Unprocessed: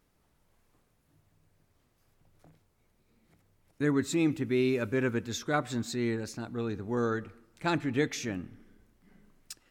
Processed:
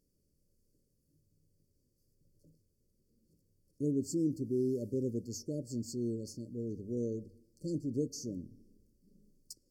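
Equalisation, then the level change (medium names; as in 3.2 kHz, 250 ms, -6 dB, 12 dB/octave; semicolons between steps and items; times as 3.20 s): brick-wall FIR band-stop 600–4300 Hz; peaking EQ 510 Hz -3.5 dB 0.38 oct; hum notches 50/100 Hz; -4.5 dB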